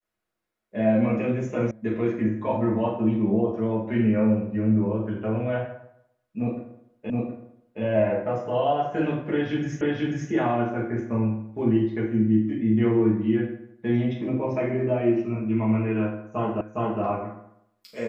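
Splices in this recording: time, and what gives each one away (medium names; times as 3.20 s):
1.71 s: sound stops dead
7.10 s: repeat of the last 0.72 s
9.81 s: repeat of the last 0.49 s
16.61 s: repeat of the last 0.41 s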